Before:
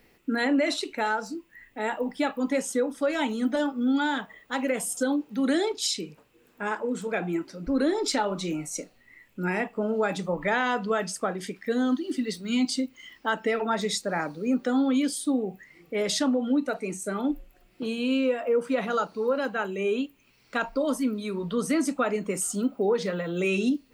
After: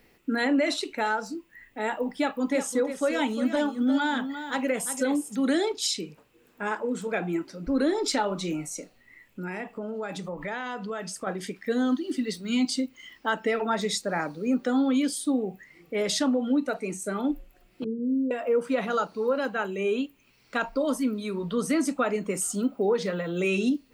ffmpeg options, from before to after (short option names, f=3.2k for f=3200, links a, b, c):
-filter_complex "[0:a]asettb=1/sr,asplit=3[a][b][c];[a]atrim=end=2.204[d];[b]atrim=start=2.2:end=5.36,asetpts=PTS-STARTPTS,afade=t=in:d=0.004:c=qsin,afade=t=out:st=3.156:d=0.004:c=qsin,aecho=1:1:352:0.316,atrim=end_sample=139356[e];[c]atrim=start=5.356[f];[d][e]acrossfade=d=0.004:c1=hsin:c2=qsin[g];[g][f]acrossfade=d=0.004:c1=qsin:c2=hsin,asettb=1/sr,asplit=3[h][i][j];[h]atrim=end=8.724[k];[i]atrim=start=8.72:end=11.27,asetpts=PTS-STARTPTS,afade=t=in:d=0.004:c=qsin,afade=t=out:st=2.546:d=0.004:c=qsin,acompressor=threshold=-33dB:ratio=2.5:attack=3.2:release=140:knee=1:detection=peak[l];[j]atrim=start=11.266[m];[k][l]acrossfade=d=0.004:c1=hsin:c2=qsin[n];[n][m]acrossfade=d=0.004:c1=qsin:c2=hsin,asettb=1/sr,asplit=3[o][p][q];[o]atrim=end=17.844[r];[p]atrim=start=17.84:end=18.31,asetpts=PTS-STARTPTS,afade=t=in:d=0.004:c=qsin,afade=t=out:st=0.466:d=0.004:c=qsin,asuperpass=centerf=240:order=20:qfactor=0.69[s];[q]atrim=start=18.306[t];[r][s]acrossfade=d=0.004:c1=hsin:c2=qsin[u];[u][t]acrossfade=d=0.004:c1=qsin:c2=hsin"